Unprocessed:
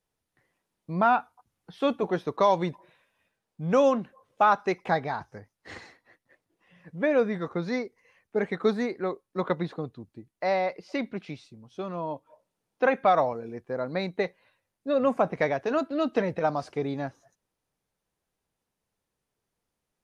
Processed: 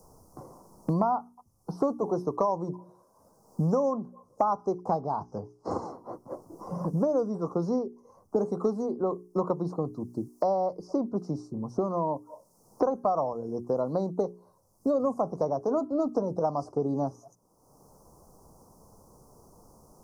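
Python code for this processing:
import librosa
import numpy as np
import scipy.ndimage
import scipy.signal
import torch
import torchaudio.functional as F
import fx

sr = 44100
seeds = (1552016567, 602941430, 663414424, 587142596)

y = fx.lowpass(x, sr, hz=5000.0, slope=12, at=(5.01, 5.71))
y = scipy.signal.sosfilt(scipy.signal.ellip(3, 1.0, 40, [1100.0, 5400.0], 'bandstop', fs=sr, output='sos'), y)
y = fx.hum_notches(y, sr, base_hz=60, count=7)
y = fx.band_squash(y, sr, depth_pct=100)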